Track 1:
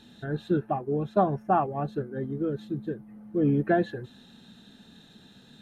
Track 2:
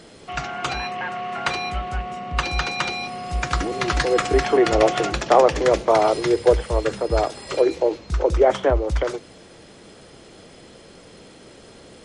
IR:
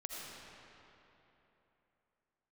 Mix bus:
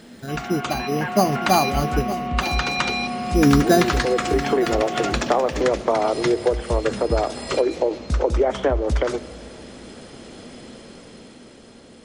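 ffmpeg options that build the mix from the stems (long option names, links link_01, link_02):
-filter_complex "[0:a]acrusher=samples=8:mix=1:aa=0.000001,volume=0.5dB,asplit=3[link_01][link_02][link_03];[link_01]atrim=end=2.13,asetpts=PTS-STARTPTS,afade=type=out:start_time=2.126:duration=0.004:curve=hsin[link_04];[link_02]atrim=start=2.13:end=3.18,asetpts=PTS-STARTPTS,volume=0[link_05];[link_03]atrim=start=3.18,asetpts=PTS-STARTPTS,afade=type=in:duration=0.004:curve=hsin[link_06];[link_04][link_05][link_06]concat=n=3:v=0:a=1,asplit=2[link_07][link_08];[link_08]volume=-15.5dB[link_09];[1:a]acompressor=threshold=-20dB:ratio=6,volume=-3.5dB,asplit=2[link_10][link_11];[link_11]volume=-14.5dB[link_12];[2:a]atrim=start_sample=2205[link_13];[link_12][link_13]afir=irnorm=-1:irlink=0[link_14];[link_09]aecho=0:1:914:1[link_15];[link_07][link_10][link_14][link_15]amix=inputs=4:normalize=0,equalizer=frequency=240:width=4.9:gain=10,dynaudnorm=framelen=140:gausssize=17:maxgain=6.5dB"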